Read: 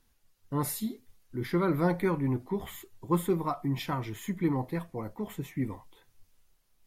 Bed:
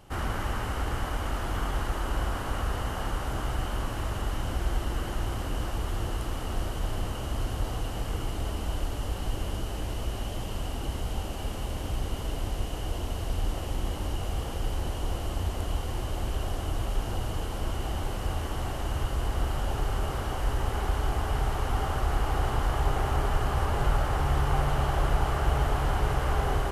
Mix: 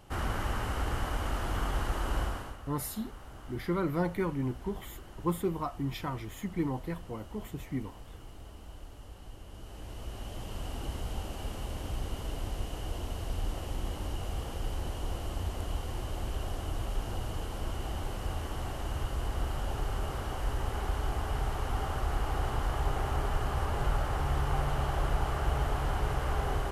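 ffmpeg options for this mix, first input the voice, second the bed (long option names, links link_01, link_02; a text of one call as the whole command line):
ffmpeg -i stem1.wav -i stem2.wav -filter_complex "[0:a]adelay=2150,volume=-3.5dB[link_01];[1:a]volume=10dB,afade=type=out:start_time=2.19:duration=0.38:silence=0.188365,afade=type=in:start_time=9.47:duration=1.31:silence=0.251189[link_02];[link_01][link_02]amix=inputs=2:normalize=0" out.wav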